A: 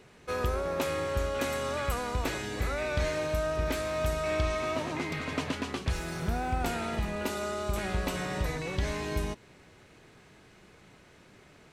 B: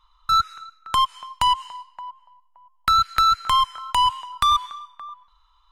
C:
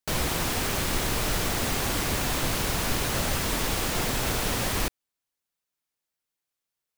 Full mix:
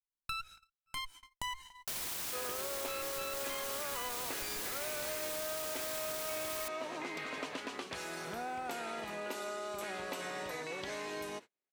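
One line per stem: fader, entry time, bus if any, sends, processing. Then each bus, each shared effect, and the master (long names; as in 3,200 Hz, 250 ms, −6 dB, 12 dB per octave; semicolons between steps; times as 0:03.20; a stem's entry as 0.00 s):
−1.5 dB, 2.05 s, no bus, no send, high-pass filter 350 Hz 12 dB per octave
−11.0 dB, 0.00 s, bus A, no send, lower of the sound and its delayed copy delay 1.3 ms; high-shelf EQ 6,500 Hz +10.5 dB; mains-hum notches 60/120 Hz
−6.0 dB, 1.80 s, bus A, no send, spectral tilt +3 dB per octave
bus A: 0.0 dB, brickwall limiter −24 dBFS, peak gain reduction 9.5 dB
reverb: not used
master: noise gate −47 dBFS, range −38 dB; downward compressor 3 to 1, threshold −38 dBFS, peak gain reduction 9 dB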